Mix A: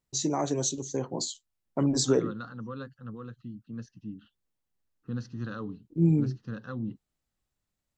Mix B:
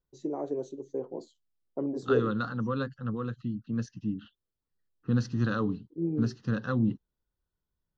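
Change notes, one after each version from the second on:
first voice: add band-pass 430 Hz, Q 2; second voice +8.0 dB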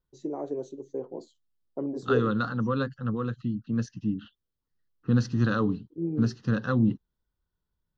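second voice +3.5 dB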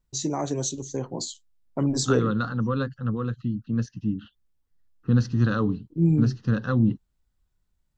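first voice: remove band-pass 430 Hz, Q 2; master: add low shelf 86 Hz +11 dB

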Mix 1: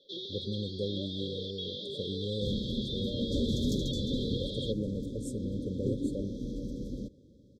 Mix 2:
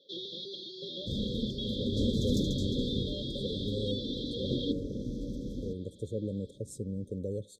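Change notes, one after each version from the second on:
speech: entry +1.45 s; second sound: entry -1.35 s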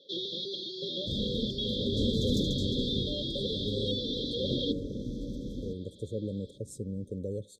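first sound +5.0 dB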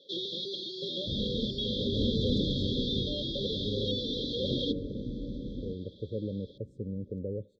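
speech: add LPF 1200 Hz 12 dB/oct; second sound: add air absorption 230 m

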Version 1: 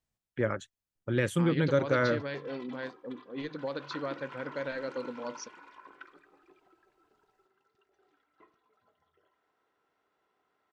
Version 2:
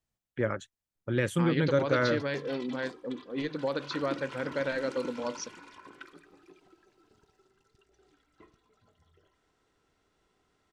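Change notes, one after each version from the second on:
second voice +4.5 dB; background: remove band-pass 1000 Hz, Q 0.72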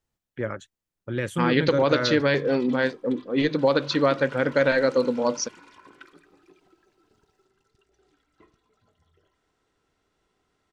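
second voice +11.0 dB

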